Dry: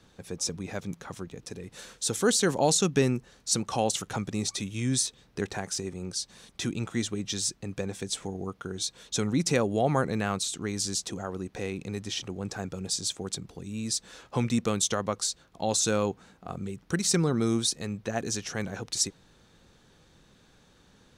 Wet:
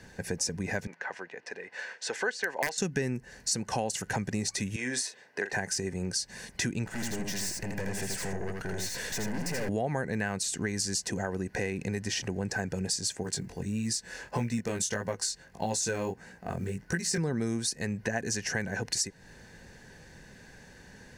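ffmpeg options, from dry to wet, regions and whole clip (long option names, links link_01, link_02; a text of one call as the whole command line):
ffmpeg -i in.wav -filter_complex "[0:a]asettb=1/sr,asplit=3[link_01][link_02][link_03];[link_01]atrim=end=0.874[link_04];[link_02]atrim=start=0.87:end=2.78,asetpts=PTS-STARTPTS,afade=type=in:duration=0.004:curve=qsin,afade=type=out:start_time=1.906:duration=0.004:curve=qsin,highpass=650,lowpass=2900,aeval=exprs='(mod(8.41*val(0)+1,2)-1)/8.41':channel_layout=same[link_05];[link_03]atrim=start=2.776[link_06];[link_04][link_05]acrossfade=duration=0.004:curve1=hsin:curve2=qsin[link_07];[link_07][link_06]acrossfade=duration=0.004:curve1=qsin:curve2=hsin,asettb=1/sr,asplit=3[link_08][link_09][link_10];[link_08]atrim=end=4.764[link_11];[link_09]atrim=start=4.76:end=5.53,asetpts=PTS-STARTPTS,afade=type=in:duration=0.004:curve=qsin,afade=type=out:start_time=0.766:duration=0.004:curve=qsin,highpass=500,highshelf=frequency=4100:gain=-11.5,asplit=2[link_12][link_13];[link_13]adelay=40,volume=-10dB[link_14];[link_12][link_14]amix=inputs=2:normalize=0,atrim=end_sample=33957[link_15];[link_10]atrim=start=5.526[link_16];[link_11][link_15]acrossfade=duration=0.004:curve1=hsin:curve2=qsin[link_17];[link_17][link_16]acrossfade=duration=0.004:curve1=qsin:curve2=hsin,asettb=1/sr,asplit=3[link_18][link_19][link_20];[link_18]atrim=end=6.864[link_21];[link_19]atrim=start=6.86:end=9.69,asetpts=PTS-STARTPTS,afade=type=in:duration=0.004:curve=qsin,afade=type=out:start_time=2.826:duration=0.004:curve=qsin,acompressor=mode=upward:threshold=-30dB:ratio=2.5:attack=3.2:release=140:knee=2.83:detection=peak,aeval=exprs='(tanh(89.1*val(0)+0.5)-tanh(0.5))/89.1':channel_layout=same,aecho=1:1:82:0.668,atrim=end_sample=124803[link_22];[link_20]atrim=start=9.686[link_23];[link_21][link_22]acrossfade=duration=0.004:curve1=hsin:curve2=qsin[link_24];[link_24][link_23]acrossfade=duration=0.004:curve1=qsin:curve2=hsin,asettb=1/sr,asplit=3[link_25][link_26][link_27];[link_25]atrim=end=13.234[link_28];[link_26]atrim=start=13.23:end=17.18,asetpts=PTS-STARTPTS,afade=type=in:duration=0.004:curve=qsin,afade=type=out:start_time=3.946:duration=0.004:curve=qsin,acrusher=bits=9:mode=log:mix=0:aa=0.000001,flanger=delay=17:depth=5.6:speed=1.6[link_29];[link_27]atrim=start=17.176[link_30];[link_28][link_29]acrossfade=duration=0.004:curve1=hsin:curve2=qsin[link_31];[link_31][link_30]acrossfade=duration=0.004:curve1=qsin:curve2=hsin,superequalizer=6b=0.708:10b=0.398:11b=2.24:13b=0.398,acompressor=threshold=-36dB:ratio=5,volume=7.5dB" out.wav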